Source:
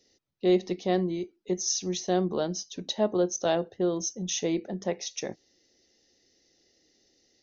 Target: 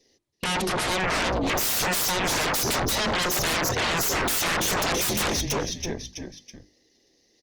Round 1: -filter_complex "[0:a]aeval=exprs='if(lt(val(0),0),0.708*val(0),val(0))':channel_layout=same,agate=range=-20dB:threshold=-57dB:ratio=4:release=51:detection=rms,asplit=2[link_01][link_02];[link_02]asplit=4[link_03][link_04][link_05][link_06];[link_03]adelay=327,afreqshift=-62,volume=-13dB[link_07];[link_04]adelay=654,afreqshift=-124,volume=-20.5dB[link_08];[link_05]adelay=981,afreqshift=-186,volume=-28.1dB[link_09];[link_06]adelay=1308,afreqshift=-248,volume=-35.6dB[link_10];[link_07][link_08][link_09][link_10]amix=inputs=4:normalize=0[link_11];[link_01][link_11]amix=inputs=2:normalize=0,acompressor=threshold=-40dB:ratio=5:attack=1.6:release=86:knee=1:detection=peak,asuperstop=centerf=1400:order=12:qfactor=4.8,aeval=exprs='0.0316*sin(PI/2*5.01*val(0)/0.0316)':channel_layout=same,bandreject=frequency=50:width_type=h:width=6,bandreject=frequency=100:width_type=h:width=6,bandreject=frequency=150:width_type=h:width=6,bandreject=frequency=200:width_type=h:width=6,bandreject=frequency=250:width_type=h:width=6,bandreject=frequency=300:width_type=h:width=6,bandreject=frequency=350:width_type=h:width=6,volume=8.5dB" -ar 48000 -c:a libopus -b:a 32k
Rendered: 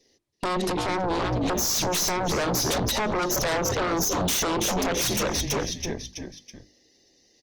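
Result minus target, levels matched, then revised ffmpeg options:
downward compressor: peak gain reduction +7.5 dB
-filter_complex "[0:a]aeval=exprs='if(lt(val(0),0),0.708*val(0),val(0))':channel_layout=same,agate=range=-20dB:threshold=-57dB:ratio=4:release=51:detection=rms,asplit=2[link_01][link_02];[link_02]asplit=4[link_03][link_04][link_05][link_06];[link_03]adelay=327,afreqshift=-62,volume=-13dB[link_07];[link_04]adelay=654,afreqshift=-124,volume=-20.5dB[link_08];[link_05]adelay=981,afreqshift=-186,volume=-28.1dB[link_09];[link_06]adelay=1308,afreqshift=-248,volume=-35.6dB[link_10];[link_07][link_08][link_09][link_10]amix=inputs=4:normalize=0[link_11];[link_01][link_11]amix=inputs=2:normalize=0,acompressor=threshold=-30.5dB:ratio=5:attack=1.6:release=86:knee=1:detection=peak,asuperstop=centerf=1400:order=12:qfactor=4.8,aeval=exprs='0.0316*sin(PI/2*5.01*val(0)/0.0316)':channel_layout=same,bandreject=frequency=50:width_type=h:width=6,bandreject=frequency=100:width_type=h:width=6,bandreject=frequency=150:width_type=h:width=6,bandreject=frequency=200:width_type=h:width=6,bandreject=frequency=250:width_type=h:width=6,bandreject=frequency=300:width_type=h:width=6,bandreject=frequency=350:width_type=h:width=6,volume=8.5dB" -ar 48000 -c:a libopus -b:a 32k

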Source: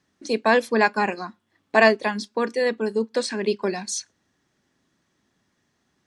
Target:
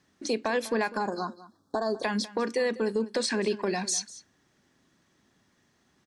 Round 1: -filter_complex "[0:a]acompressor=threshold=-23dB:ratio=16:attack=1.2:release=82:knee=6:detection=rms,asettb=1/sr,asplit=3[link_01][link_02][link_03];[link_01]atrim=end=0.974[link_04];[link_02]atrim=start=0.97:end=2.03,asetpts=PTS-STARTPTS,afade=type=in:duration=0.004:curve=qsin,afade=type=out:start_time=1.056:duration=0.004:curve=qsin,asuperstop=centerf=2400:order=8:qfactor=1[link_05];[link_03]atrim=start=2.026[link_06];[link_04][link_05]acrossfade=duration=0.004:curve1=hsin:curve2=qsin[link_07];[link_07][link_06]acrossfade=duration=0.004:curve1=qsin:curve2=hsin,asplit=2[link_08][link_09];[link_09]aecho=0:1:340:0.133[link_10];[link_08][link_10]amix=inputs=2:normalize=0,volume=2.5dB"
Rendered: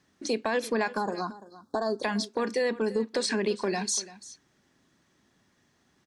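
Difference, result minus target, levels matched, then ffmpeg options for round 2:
echo 142 ms late
-filter_complex "[0:a]acompressor=threshold=-23dB:ratio=16:attack=1.2:release=82:knee=6:detection=rms,asettb=1/sr,asplit=3[link_01][link_02][link_03];[link_01]atrim=end=0.974[link_04];[link_02]atrim=start=0.97:end=2.03,asetpts=PTS-STARTPTS,afade=type=in:duration=0.004:curve=qsin,afade=type=out:start_time=1.056:duration=0.004:curve=qsin,asuperstop=centerf=2400:order=8:qfactor=1[link_05];[link_03]atrim=start=2.026[link_06];[link_04][link_05]acrossfade=duration=0.004:curve1=hsin:curve2=qsin[link_07];[link_07][link_06]acrossfade=duration=0.004:curve1=qsin:curve2=hsin,asplit=2[link_08][link_09];[link_09]aecho=0:1:198:0.133[link_10];[link_08][link_10]amix=inputs=2:normalize=0,volume=2.5dB"

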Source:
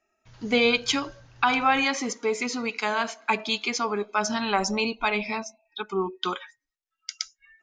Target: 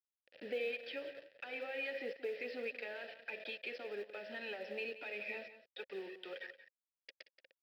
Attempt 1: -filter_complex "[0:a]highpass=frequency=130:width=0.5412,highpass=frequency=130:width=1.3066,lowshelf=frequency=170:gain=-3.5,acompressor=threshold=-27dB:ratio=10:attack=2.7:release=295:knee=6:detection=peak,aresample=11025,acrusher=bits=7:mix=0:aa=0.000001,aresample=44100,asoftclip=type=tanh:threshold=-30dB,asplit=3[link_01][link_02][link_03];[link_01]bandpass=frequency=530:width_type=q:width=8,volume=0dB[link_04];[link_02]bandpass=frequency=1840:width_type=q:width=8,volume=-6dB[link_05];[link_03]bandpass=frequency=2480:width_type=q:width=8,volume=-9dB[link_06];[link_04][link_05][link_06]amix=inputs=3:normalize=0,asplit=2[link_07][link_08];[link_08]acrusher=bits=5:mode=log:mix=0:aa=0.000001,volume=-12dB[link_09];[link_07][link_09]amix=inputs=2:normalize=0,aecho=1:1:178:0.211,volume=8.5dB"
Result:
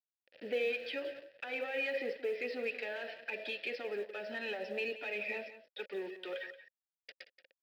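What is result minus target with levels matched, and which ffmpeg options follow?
downward compressor: peak gain reduction −7 dB
-filter_complex "[0:a]highpass=frequency=130:width=0.5412,highpass=frequency=130:width=1.3066,lowshelf=frequency=170:gain=-3.5,acompressor=threshold=-35dB:ratio=10:attack=2.7:release=295:knee=6:detection=peak,aresample=11025,acrusher=bits=7:mix=0:aa=0.000001,aresample=44100,asoftclip=type=tanh:threshold=-30dB,asplit=3[link_01][link_02][link_03];[link_01]bandpass=frequency=530:width_type=q:width=8,volume=0dB[link_04];[link_02]bandpass=frequency=1840:width_type=q:width=8,volume=-6dB[link_05];[link_03]bandpass=frequency=2480:width_type=q:width=8,volume=-9dB[link_06];[link_04][link_05][link_06]amix=inputs=3:normalize=0,asplit=2[link_07][link_08];[link_08]acrusher=bits=5:mode=log:mix=0:aa=0.000001,volume=-12dB[link_09];[link_07][link_09]amix=inputs=2:normalize=0,aecho=1:1:178:0.211,volume=8.5dB"

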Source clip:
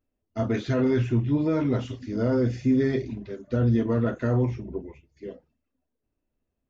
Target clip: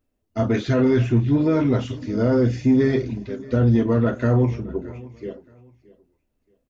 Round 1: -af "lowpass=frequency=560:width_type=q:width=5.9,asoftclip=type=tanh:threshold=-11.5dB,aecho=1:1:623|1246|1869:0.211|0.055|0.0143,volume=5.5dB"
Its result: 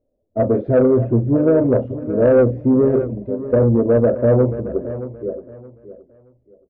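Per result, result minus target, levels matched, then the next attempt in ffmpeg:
echo-to-direct +7 dB; 500 Hz band +4.5 dB
-af "lowpass=frequency=560:width_type=q:width=5.9,asoftclip=type=tanh:threshold=-11.5dB,aecho=1:1:623|1246:0.0944|0.0245,volume=5.5dB"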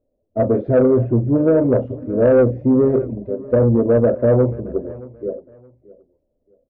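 500 Hz band +4.5 dB
-af "asoftclip=type=tanh:threshold=-11.5dB,aecho=1:1:623|1246:0.0944|0.0245,volume=5.5dB"

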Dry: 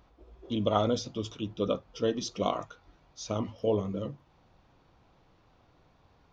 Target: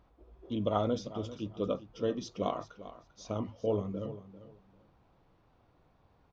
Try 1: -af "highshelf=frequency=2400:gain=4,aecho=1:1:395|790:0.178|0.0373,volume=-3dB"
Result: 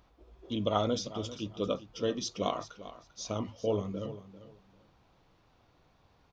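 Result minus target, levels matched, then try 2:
4,000 Hz band +7.5 dB
-af "highshelf=frequency=2400:gain=-8,aecho=1:1:395|790:0.178|0.0373,volume=-3dB"

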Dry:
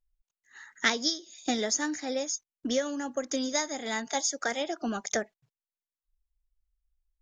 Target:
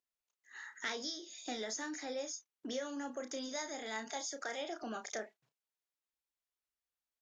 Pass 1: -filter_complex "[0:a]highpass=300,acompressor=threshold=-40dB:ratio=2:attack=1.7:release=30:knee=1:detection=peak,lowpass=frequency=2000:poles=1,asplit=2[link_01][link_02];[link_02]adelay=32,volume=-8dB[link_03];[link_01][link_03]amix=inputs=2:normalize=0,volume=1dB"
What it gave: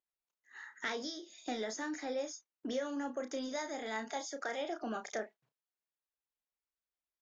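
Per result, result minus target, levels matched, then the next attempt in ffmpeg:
8,000 Hz band −5.5 dB; downward compressor: peak gain reduction −4 dB
-filter_complex "[0:a]highpass=300,acompressor=threshold=-40dB:ratio=2:attack=1.7:release=30:knee=1:detection=peak,lowpass=frequency=6600:poles=1,asplit=2[link_01][link_02];[link_02]adelay=32,volume=-8dB[link_03];[link_01][link_03]amix=inputs=2:normalize=0,volume=1dB"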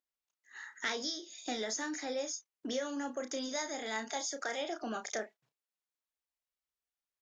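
downward compressor: peak gain reduction −4 dB
-filter_complex "[0:a]highpass=300,acompressor=threshold=-47.5dB:ratio=2:attack=1.7:release=30:knee=1:detection=peak,lowpass=frequency=6600:poles=1,asplit=2[link_01][link_02];[link_02]adelay=32,volume=-8dB[link_03];[link_01][link_03]amix=inputs=2:normalize=0,volume=1dB"

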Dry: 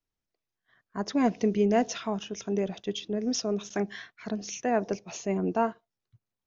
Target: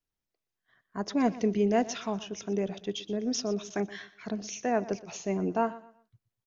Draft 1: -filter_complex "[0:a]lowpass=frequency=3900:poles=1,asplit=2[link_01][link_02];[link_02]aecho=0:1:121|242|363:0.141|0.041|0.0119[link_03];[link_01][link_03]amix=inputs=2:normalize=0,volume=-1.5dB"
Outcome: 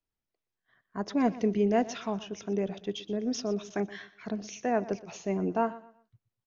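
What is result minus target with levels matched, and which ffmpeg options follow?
4,000 Hz band −3.0 dB
-filter_complex "[0:a]asplit=2[link_01][link_02];[link_02]aecho=0:1:121|242|363:0.141|0.041|0.0119[link_03];[link_01][link_03]amix=inputs=2:normalize=0,volume=-1.5dB"

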